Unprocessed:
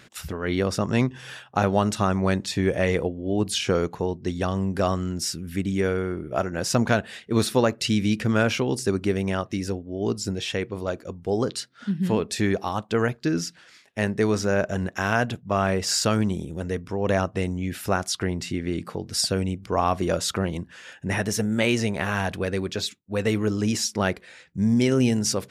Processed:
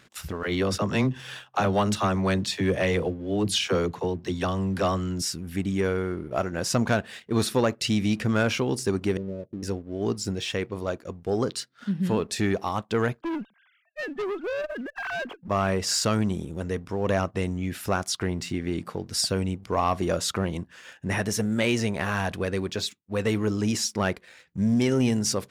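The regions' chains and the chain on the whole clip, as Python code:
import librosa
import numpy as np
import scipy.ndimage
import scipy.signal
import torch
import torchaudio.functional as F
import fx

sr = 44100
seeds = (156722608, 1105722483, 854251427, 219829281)

y = fx.chain(x, sr, fx.highpass(hz=44.0, slope=12),
    fx.peak_eq(hz=3400.0, db=4.0, octaves=1.0),
    fx.dispersion(late='lows', ms=44.0, hz=320.0), at=(0.43, 5.22))
y = fx.chain(y, sr, fx.cheby_ripple(hz=610.0, ripple_db=3),
    fx.low_shelf(hz=290.0, db=-8.0), at=(9.17, 9.63))
y = fx.chain(y, sr, fx.sine_speech(),
    fx.tube_stage(drive_db=26.0, bias=0.3), at=(13.21, 15.48))
y = fx.peak_eq(y, sr, hz=1100.0, db=2.5, octaves=0.34)
y = fx.leveller(y, sr, passes=1)
y = F.gain(torch.from_numpy(y), -5.0).numpy()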